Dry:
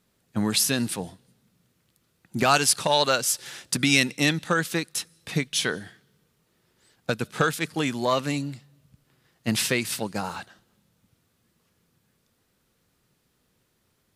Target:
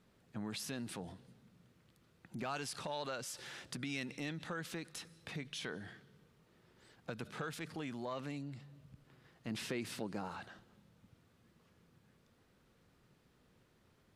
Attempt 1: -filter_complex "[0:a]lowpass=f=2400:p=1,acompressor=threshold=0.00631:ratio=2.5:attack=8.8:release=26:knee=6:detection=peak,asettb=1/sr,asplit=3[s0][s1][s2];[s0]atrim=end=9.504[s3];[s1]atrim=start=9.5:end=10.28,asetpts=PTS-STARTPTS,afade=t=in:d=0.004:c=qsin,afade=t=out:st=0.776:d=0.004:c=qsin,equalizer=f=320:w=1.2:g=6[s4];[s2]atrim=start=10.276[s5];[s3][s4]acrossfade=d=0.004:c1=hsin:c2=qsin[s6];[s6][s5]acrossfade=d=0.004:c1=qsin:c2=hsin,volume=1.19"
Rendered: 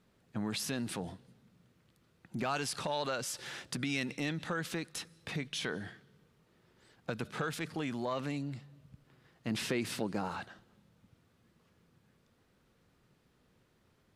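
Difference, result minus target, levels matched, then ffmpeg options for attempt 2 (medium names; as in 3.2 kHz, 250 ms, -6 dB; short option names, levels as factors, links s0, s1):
compression: peak gain reduction -6.5 dB
-filter_complex "[0:a]lowpass=f=2400:p=1,acompressor=threshold=0.00188:ratio=2.5:attack=8.8:release=26:knee=6:detection=peak,asettb=1/sr,asplit=3[s0][s1][s2];[s0]atrim=end=9.504[s3];[s1]atrim=start=9.5:end=10.28,asetpts=PTS-STARTPTS,afade=t=in:d=0.004:c=qsin,afade=t=out:st=0.776:d=0.004:c=qsin,equalizer=f=320:w=1.2:g=6[s4];[s2]atrim=start=10.276[s5];[s3][s4]acrossfade=d=0.004:c1=hsin:c2=qsin[s6];[s6][s5]acrossfade=d=0.004:c1=qsin:c2=hsin,volume=1.19"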